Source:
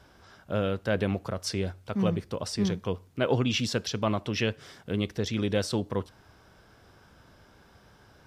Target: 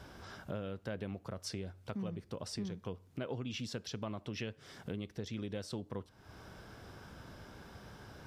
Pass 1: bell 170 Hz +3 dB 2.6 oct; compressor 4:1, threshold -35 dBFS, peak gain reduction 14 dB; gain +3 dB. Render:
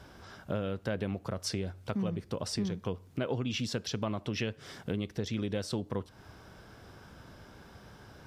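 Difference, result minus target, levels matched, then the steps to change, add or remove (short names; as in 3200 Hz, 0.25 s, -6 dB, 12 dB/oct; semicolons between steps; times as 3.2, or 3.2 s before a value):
compressor: peak gain reduction -7 dB
change: compressor 4:1, threshold -44.5 dBFS, peak gain reduction 21 dB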